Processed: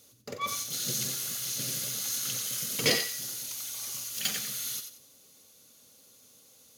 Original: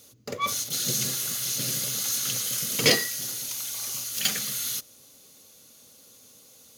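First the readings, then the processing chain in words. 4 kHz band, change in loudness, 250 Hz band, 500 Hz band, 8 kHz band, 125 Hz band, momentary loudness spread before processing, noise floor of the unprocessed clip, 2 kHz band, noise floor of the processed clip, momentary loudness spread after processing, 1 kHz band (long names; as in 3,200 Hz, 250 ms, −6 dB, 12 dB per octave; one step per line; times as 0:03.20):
−4.5 dB, −4.5 dB, −5.5 dB, −5.0 dB, −4.5 dB, −5.5 dB, 9 LU, −54 dBFS, −5.0 dB, −59 dBFS, 8 LU, −5.0 dB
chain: feedback echo with a high-pass in the loop 90 ms, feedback 30%, high-pass 1,000 Hz, level −7 dB
level −5.5 dB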